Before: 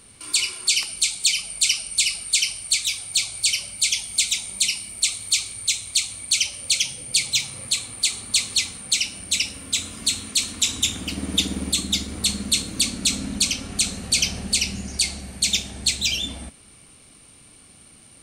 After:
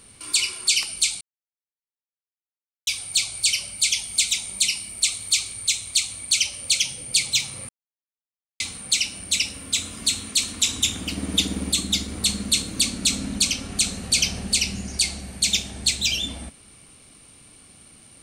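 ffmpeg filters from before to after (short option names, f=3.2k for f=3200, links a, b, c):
-filter_complex "[0:a]asplit=5[a][b][c][d][e];[a]atrim=end=1.21,asetpts=PTS-STARTPTS,afade=t=out:st=1.206:d=0.004:c=hsin[f];[b]atrim=start=1.21:end=2.87,asetpts=PTS-STARTPTS,volume=0[g];[c]atrim=start=2.87:end=7.69,asetpts=PTS-STARTPTS,afade=t=in:d=0.004:c=hsin,afade=t=out:st=4.816:d=0.004:c=hsin[h];[d]atrim=start=7.69:end=8.6,asetpts=PTS-STARTPTS,volume=0[i];[e]atrim=start=8.6,asetpts=PTS-STARTPTS,afade=t=in:d=0.004:c=hsin[j];[f][g][h][i][j]concat=n=5:v=0:a=1"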